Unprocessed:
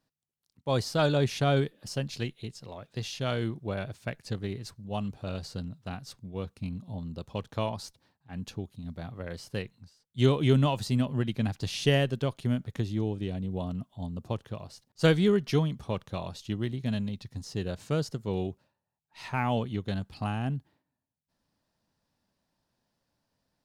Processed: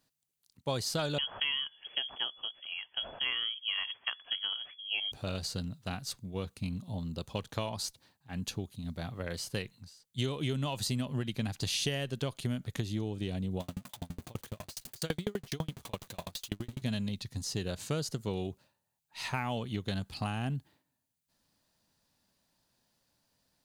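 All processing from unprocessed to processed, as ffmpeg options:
ffmpeg -i in.wav -filter_complex "[0:a]asettb=1/sr,asplit=3[link_01][link_02][link_03];[link_01]atrim=end=1.184[link_04];[link_02]atrim=start=1.18:end=5.12,asetpts=PTS-STARTPTS,afade=type=in:duration=0.004:curve=qsin,afade=type=out:start_time=3.936:duration=0.004:curve=qsin,equalizer=frequency=140:width_type=o:width=2.8:gain=-8,lowpass=frequency=2900:width_type=q:width=0.5098,lowpass=frequency=2900:width_type=q:width=0.6013,lowpass=frequency=2900:width_type=q:width=0.9,lowpass=frequency=2900:width_type=q:width=2.563,afreqshift=-3400[link_05];[link_03]atrim=start=5.116[link_06];[link_04][link_05]acrossfade=duration=0.004:curve1=hsin:curve2=qsin[link_07];[link_07][link_06]acrossfade=duration=0.004:curve1=qsin:curve2=hsin,asettb=1/sr,asplit=3[link_08][link_09][link_10];[link_08]atrim=end=13.604[link_11];[link_09]atrim=start=13.6:end=16.82,asetpts=PTS-STARTPTS,afade=type=in:duration=0.004:curve=qsin,afade=type=out:start_time=3.216:duration=0.004:curve=qsin,aeval=exprs='val(0)+0.5*0.0119*sgn(val(0))':channel_layout=same,aeval=exprs='val(0)*pow(10,-39*if(lt(mod(12*n/s,1),2*abs(12)/1000),1-mod(12*n/s,1)/(2*abs(12)/1000),(mod(12*n/s,1)-2*abs(12)/1000)/(1-2*abs(12)/1000))/20)':channel_layout=same[link_12];[link_10]atrim=start=16.816[link_13];[link_11][link_12]acrossfade=duration=0.004:curve1=hsin:curve2=qsin[link_14];[link_14][link_13]acrossfade=duration=0.004:curve1=qsin:curve2=hsin,highshelf=frequency=2700:gain=10,bandreject=frequency=5400:width=15,acompressor=threshold=-29dB:ratio=12" out.wav

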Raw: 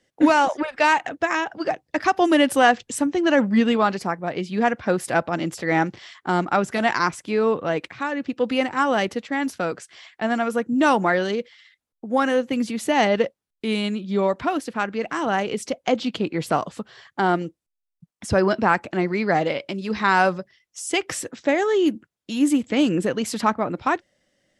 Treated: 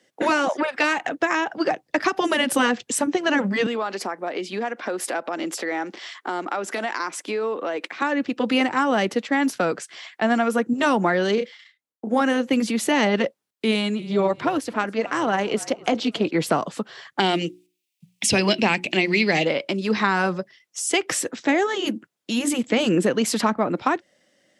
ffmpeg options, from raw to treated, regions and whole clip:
ffmpeg -i in.wav -filter_complex "[0:a]asettb=1/sr,asplit=3[link_01][link_02][link_03];[link_01]atrim=end=3.664[link_04];[link_02]atrim=start=3.66:end=8.02,asetpts=PTS-STARTPTS,afade=type=in:duration=0.004:curve=qsin,afade=type=out:start_time=4.356:duration=0.004:curve=qsin,highpass=frequency=250:width=0.5412,highpass=frequency=250:width=1.3066,acompressor=threshold=-29dB:ratio=4:attack=3.2:release=140:knee=1:detection=peak[link_05];[link_03]atrim=start=8.016[link_06];[link_04][link_05]acrossfade=duration=0.004:curve1=hsin:curve2=qsin[link_07];[link_07][link_06]acrossfade=duration=0.004:curve1=qsin:curve2=hsin,asettb=1/sr,asplit=3[link_08][link_09][link_10];[link_08]atrim=end=11.344[link_11];[link_09]atrim=start=11.34:end=12.21,asetpts=PTS-STARTPTS,afade=type=in:duration=0.004:curve=qsin,afade=type=out:start_time=0.866:duration=0.004:curve=qsin,agate=range=-13dB:threshold=-52dB:ratio=16:release=100:detection=peak,asplit=2[link_12][link_13];[link_13]adelay=32,volume=-7dB[link_14];[link_12][link_14]amix=inputs=2:normalize=0,atrim=end_sample=38367[link_15];[link_10]atrim=start=12.206[link_16];[link_11][link_15]acrossfade=duration=0.004:curve1=hsin:curve2=qsin[link_17];[link_17][link_16]acrossfade=duration=0.004:curve1=qsin:curve2=hsin,asettb=1/sr,asplit=3[link_18][link_19][link_20];[link_18]atrim=end=13.714[link_21];[link_19]atrim=start=13.71:end=16.31,asetpts=PTS-STARTPTS,afade=type=in:duration=0.004:curve=qsin,afade=type=out:start_time=2.596:duration=0.004:curve=qsin,asplit=4[link_22][link_23][link_24][link_25];[link_23]adelay=270,afreqshift=-49,volume=-22dB[link_26];[link_24]adelay=540,afreqshift=-98,volume=-29.1dB[link_27];[link_25]adelay=810,afreqshift=-147,volume=-36.3dB[link_28];[link_22][link_26][link_27][link_28]amix=inputs=4:normalize=0,atrim=end_sample=114660,tremolo=f=210:d=0.519[link_29];[link_20]atrim=start=16.306[link_30];[link_21][link_29]acrossfade=duration=0.004:curve1=hsin:curve2=qsin[link_31];[link_31][link_30]acrossfade=duration=0.004:curve1=qsin:curve2=hsin,asettb=1/sr,asplit=3[link_32][link_33][link_34];[link_32]atrim=end=17.204[link_35];[link_33]atrim=start=17.2:end=19.45,asetpts=PTS-STARTPTS,afade=type=in:duration=0.004:curve=qsin,afade=type=out:start_time=2.246:duration=0.004:curve=qsin,highshelf=frequency=1900:width_type=q:width=3:gain=10,bandreject=frequency=60:width_type=h:width=6,bandreject=frequency=120:width_type=h:width=6,bandreject=frequency=180:width_type=h:width=6,bandreject=frequency=240:width_type=h:width=6,bandreject=frequency=300:width_type=h:width=6,bandreject=frequency=360:width_type=h:width=6[link_36];[link_34]atrim=start=19.446[link_37];[link_35][link_36]acrossfade=duration=0.004:curve1=hsin:curve2=qsin[link_38];[link_38][link_37]acrossfade=duration=0.004:curve1=qsin:curve2=hsin,afftfilt=real='re*lt(hypot(re,im),1.12)':imag='im*lt(hypot(re,im),1.12)':win_size=1024:overlap=0.75,highpass=190,acrossover=split=280[link_39][link_40];[link_40]acompressor=threshold=-24dB:ratio=4[link_41];[link_39][link_41]amix=inputs=2:normalize=0,volume=5.5dB" out.wav

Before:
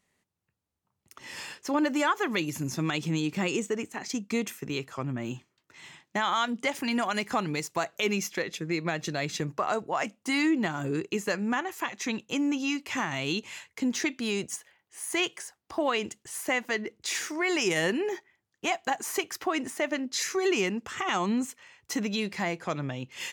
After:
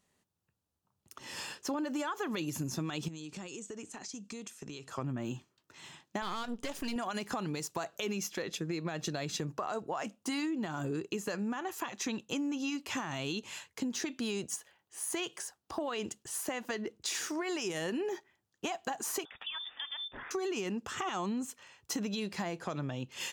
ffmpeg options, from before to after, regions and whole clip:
ffmpeg -i in.wav -filter_complex "[0:a]asettb=1/sr,asplit=3[link_01][link_02][link_03];[link_01]atrim=end=3.084[link_04];[link_02]atrim=start=3.08:end=4.9,asetpts=PTS-STARTPTS,afade=type=in:duration=0.004:curve=qsin,afade=type=out:start_time=1.816:duration=0.004:curve=qsin,aemphasis=mode=production:type=50fm,acompressor=threshold=-39dB:ratio=16:attack=3.2:release=140:knee=1:detection=peak,lowpass=frequency=8300:width=0.5412,lowpass=frequency=8300:width=1.3066[link_05];[link_03]atrim=start=4.896[link_06];[link_04][link_05]acrossfade=duration=0.004:curve1=hsin:curve2=qsin[link_07];[link_07][link_06]acrossfade=duration=0.004:curve1=qsin:curve2=hsin,asettb=1/sr,asplit=3[link_08][link_09][link_10];[link_08]atrim=end=6.224[link_11];[link_09]atrim=start=6.22:end=6.96,asetpts=PTS-STARTPTS,afade=type=in:duration=0.004:curve=qsin,afade=type=out:start_time=0.736:duration=0.004:curve=qsin,aeval=exprs='if(lt(val(0),0),0.251*val(0),val(0))':channel_layout=same,bandreject=frequency=830:width=12[link_12];[link_10]atrim=start=6.956[link_13];[link_11][link_12]acrossfade=duration=0.004:curve1=hsin:curve2=qsin[link_14];[link_14][link_13]acrossfade=duration=0.004:curve1=qsin:curve2=hsin,asettb=1/sr,asplit=3[link_15][link_16][link_17];[link_15]atrim=end=19.254[link_18];[link_16]atrim=start=19.25:end=20.31,asetpts=PTS-STARTPTS,afade=type=in:duration=0.004:curve=qsin,afade=type=out:start_time=1.056:duration=0.004:curve=qsin,lowpass=frequency=3200:width_type=q:width=0.5098,lowpass=frequency=3200:width_type=q:width=0.6013,lowpass=frequency=3200:width_type=q:width=0.9,lowpass=frequency=3200:width_type=q:width=2.563,afreqshift=-3800,acompressor=threshold=-40dB:ratio=2.5:attack=3.2:release=140:knee=1:detection=peak[link_19];[link_17]atrim=start=20.306[link_20];[link_18][link_19]acrossfade=duration=0.004:curve1=hsin:curve2=qsin[link_21];[link_21][link_20]acrossfade=duration=0.004:curve1=qsin:curve2=hsin,alimiter=limit=-21dB:level=0:latency=1:release=33,equalizer=frequency=2100:width_type=o:width=0.42:gain=-8,acompressor=threshold=-32dB:ratio=6" out.wav

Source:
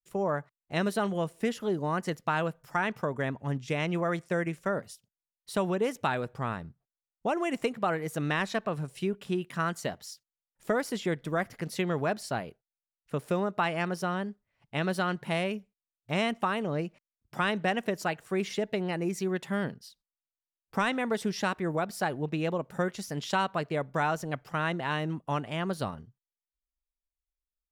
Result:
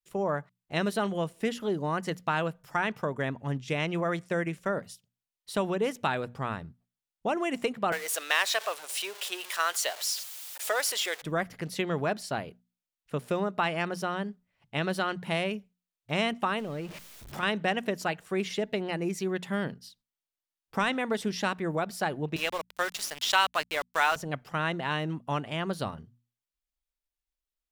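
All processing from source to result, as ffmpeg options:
ffmpeg -i in.wav -filter_complex "[0:a]asettb=1/sr,asplit=3[link_01][link_02][link_03];[link_01]atrim=end=7.924[link_04];[link_02]atrim=start=7.92:end=11.22,asetpts=PTS-STARTPTS,afade=type=in:duration=0.004:curve=qsin,afade=type=out:start_time=3.296:duration=0.004:curve=qsin,aeval=exprs='val(0)+0.5*0.01*sgn(val(0))':channel_layout=same,highpass=frequency=530:width=0.5412,highpass=frequency=530:width=1.3066,highshelf=frequency=2700:gain=10.5[link_05];[link_03]atrim=start=11.216[link_06];[link_04][link_05]acrossfade=duration=0.004:curve1=hsin:curve2=qsin[link_07];[link_07][link_06]acrossfade=duration=0.004:curve1=qsin:curve2=hsin,asettb=1/sr,asplit=3[link_08][link_09][link_10];[link_08]atrim=end=16.594[link_11];[link_09]atrim=start=16.59:end=17.43,asetpts=PTS-STARTPTS,afade=type=in:duration=0.004:curve=qsin,afade=type=out:start_time=0.836:duration=0.004:curve=qsin,aeval=exprs='val(0)+0.5*0.0106*sgn(val(0))':channel_layout=same,acompressor=threshold=-35dB:ratio=2:attack=3.2:release=140:knee=1:detection=peak[link_12];[link_10]atrim=start=17.426[link_13];[link_11][link_12]acrossfade=duration=0.004:curve1=hsin:curve2=qsin[link_14];[link_14][link_13]acrossfade=duration=0.004:curve1=qsin:curve2=hsin,asettb=1/sr,asplit=3[link_15][link_16][link_17];[link_15]atrim=end=22.364[link_18];[link_16]atrim=start=22.36:end=24.16,asetpts=PTS-STARTPTS,afade=type=in:duration=0.004:curve=qsin,afade=type=out:start_time=1.796:duration=0.004:curve=qsin,highpass=390,tiltshelf=frequency=660:gain=-9,aeval=exprs='val(0)*gte(abs(val(0)),0.0168)':channel_layout=same[link_19];[link_17]atrim=start=24.156[link_20];[link_18][link_19]acrossfade=duration=0.004:curve1=hsin:curve2=qsin[link_21];[link_21][link_20]acrossfade=duration=0.004:curve1=qsin:curve2=hsin,equalizer=frequency=3200:width=1.5:gain=3,bandreject=frequency=60:width_type=h:width=6,bandreject=frequency=120:width_type=h:width=6,bandreject=frequency=180:width_type=h:width=6,bandreject=frequency=240:width_type=h:width=6" out.wav

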